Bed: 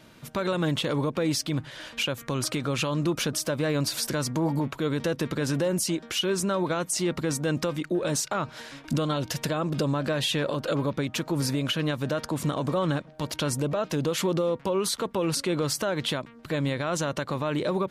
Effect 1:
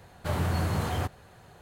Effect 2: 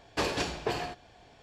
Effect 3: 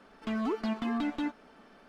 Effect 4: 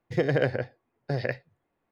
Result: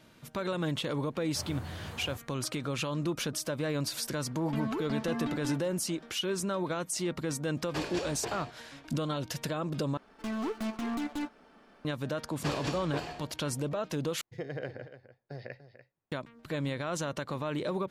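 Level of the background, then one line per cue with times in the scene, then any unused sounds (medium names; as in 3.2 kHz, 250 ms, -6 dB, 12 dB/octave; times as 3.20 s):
bed -6 dB
1.10 s: add 1 -14 dB
4.26 s: add 3 -3.5 dB
7.57 s: add 2 -7 dB
9.97 s: replace with 3 -2.5 dB + tracing distortion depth 0.23 ms
12.27 s: add 2 -6 dB
14.21 s: replace with 4 -14 dB + delay 292 ms -13 dB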